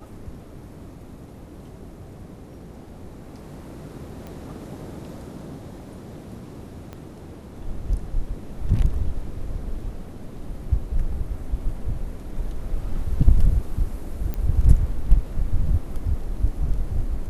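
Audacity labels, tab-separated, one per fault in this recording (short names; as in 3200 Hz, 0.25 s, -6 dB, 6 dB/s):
4.270000	4.270000	pop -24 dBFS
6.930000	6.930000	pop -23 dBFS
14.340000	14.340000	pop -16 dBFS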